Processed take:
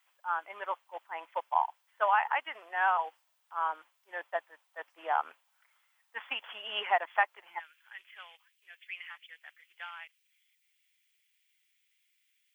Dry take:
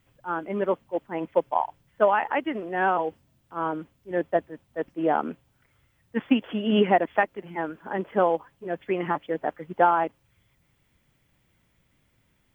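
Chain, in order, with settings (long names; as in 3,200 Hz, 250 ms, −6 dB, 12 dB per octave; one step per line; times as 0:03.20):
Chebyshev high-pass filter 880 Hz, order 3, from 0:07.58 2,300 Hz
level −1 dB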